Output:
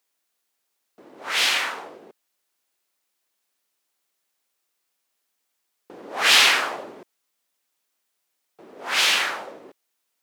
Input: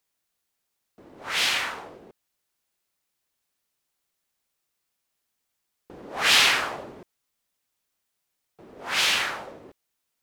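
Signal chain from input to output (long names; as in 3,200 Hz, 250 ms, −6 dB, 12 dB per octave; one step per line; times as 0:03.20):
high-pass filter 260 Hz 12 dB per octave
level +3 dB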